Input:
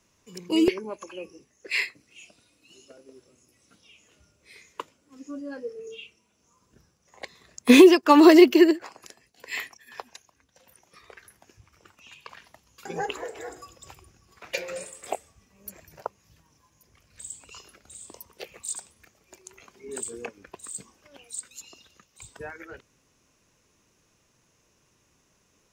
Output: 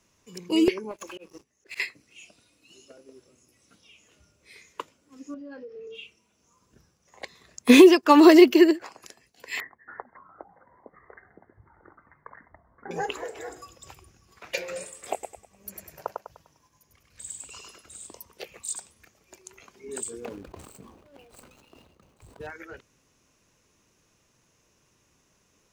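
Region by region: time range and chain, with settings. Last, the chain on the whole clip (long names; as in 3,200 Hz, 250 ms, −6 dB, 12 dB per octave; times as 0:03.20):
0:00.91–0:01.80: leveller curve on the samples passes 3 + volume swells 433 ms + downward compressor 10 to 1, threshold −36 dBFS
0:05.34–0:05.95: inverse Chebyshev low-pass filter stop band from 12,000 Hz, stop band 60 dB + downward compressor, threshold −38 dBFS
0:09.60–0:12.91: Chebyshev low-pass filter 2,100 Hz, order 10 + delay with pitch and tempo change per echo 276 ms, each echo −5 semitones, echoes 3, each echo −6 dB
0:15.13–0:18.07: downward expander −54 dBFS + upward compression, threshold −52 dBFS + feedback echo with a high-pass in the loop 100 ms, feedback 38%, high-pass 200 Hz, level −3 dB
0:20.20–0:22.47: running median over 25 samples + level that may fall only so fast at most 53 dB per second
whole clip: no processing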